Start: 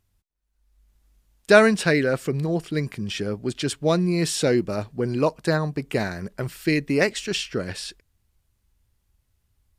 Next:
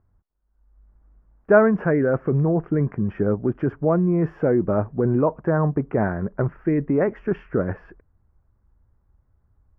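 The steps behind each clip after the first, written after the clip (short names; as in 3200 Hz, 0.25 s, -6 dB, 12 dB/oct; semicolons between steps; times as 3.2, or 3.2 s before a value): in parallel at -3 dB: negative-ratio compressor -25 dBFS, ratio -0.5; on the sum: inverse Chebyshev low-pass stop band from 3600 Hz, stop band 50 dB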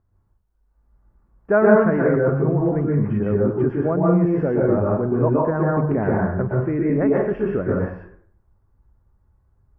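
reverb RT60 0.55 s, pre-delay 0.113 s, DRR -3.5 dB; gain -3 dB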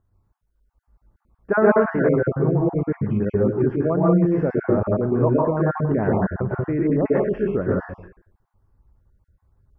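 random spectral dropouts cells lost 25%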